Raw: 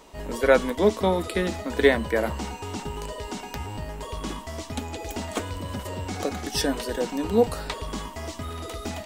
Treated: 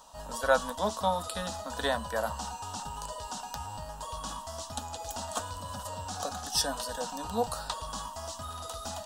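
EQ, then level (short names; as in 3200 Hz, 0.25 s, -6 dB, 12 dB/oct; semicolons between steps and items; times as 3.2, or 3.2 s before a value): low shelf 490 Hz -11.5 dB; bell 14000 Hz -9 dB 0.27 oct; fixed phaser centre 900 Hz, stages 4; +2.5 dB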